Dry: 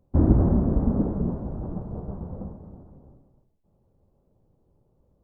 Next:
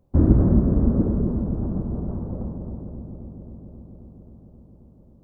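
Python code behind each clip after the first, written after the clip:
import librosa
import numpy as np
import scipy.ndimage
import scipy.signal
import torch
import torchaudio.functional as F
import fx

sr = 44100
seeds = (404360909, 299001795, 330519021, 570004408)

y = fx.dynamic_eq(x, sr, hz=810.0, q=1.8, threshold_db=-47.0, ratio=4.0, max_db=-7)
y = fx.echo_wet_lowpass(y, sr, ms=267, feedback_pct=79, hz=790.0, wet_db=-10)
y = y * librosa.db_to_amplitude(2.5)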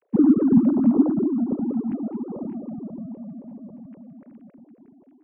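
y = fx.sine_speech(x, sr)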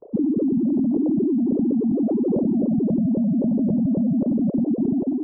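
y = scipy.ndimage.gaussian_filter1d(x, 14.0, mode='constant')
y = fx.env_flatten(y, sr, amount_pct=100)
y = y * librosa.db_to_amplitude(-7.5)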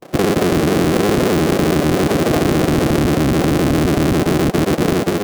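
y = fx.cycle_switch(x, sr, every=3, mode='inverted')
y = fx.notch(y, sr, hz=920.0, q=11.0)
y = y * librosa.db_to_amplitude(5.5)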